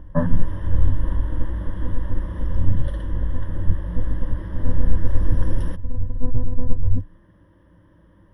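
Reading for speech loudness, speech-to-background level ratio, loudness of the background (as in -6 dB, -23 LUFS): -28.0 LUFS, 2.5 dB, -30.5 LUFS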